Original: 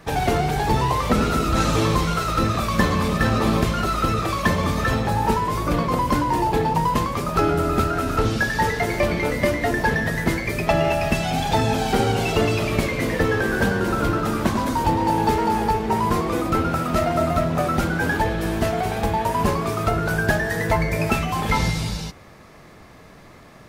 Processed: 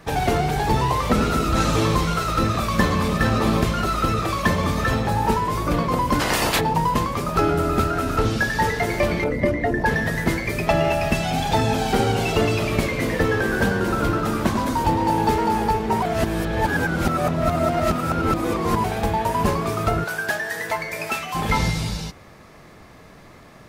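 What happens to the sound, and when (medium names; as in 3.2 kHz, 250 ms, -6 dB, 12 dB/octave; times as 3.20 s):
6.19–6.59 s: spectral peaks clipped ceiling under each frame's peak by 28 dB
9.24–9.86 s: resonances exaggerated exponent 1.5
16.02–18.84 s: reverse
20.04–21.35 s: high-pass 990 Hz 6 dB/octave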